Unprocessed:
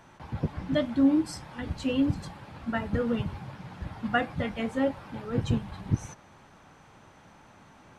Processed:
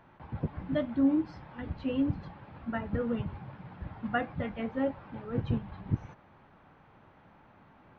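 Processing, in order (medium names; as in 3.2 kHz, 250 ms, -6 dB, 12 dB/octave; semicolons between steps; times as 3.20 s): Gaussian low-pass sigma 2.7 samples; trim -3.5 dB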